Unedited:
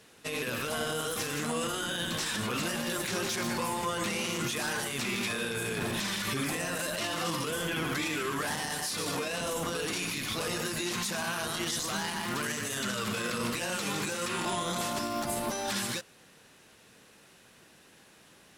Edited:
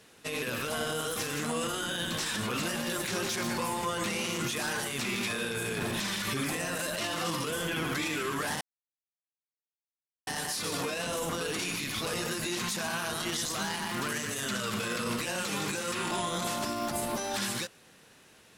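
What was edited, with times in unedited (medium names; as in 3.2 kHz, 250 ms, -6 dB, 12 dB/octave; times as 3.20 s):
8.61 s: insert silence 1.66 s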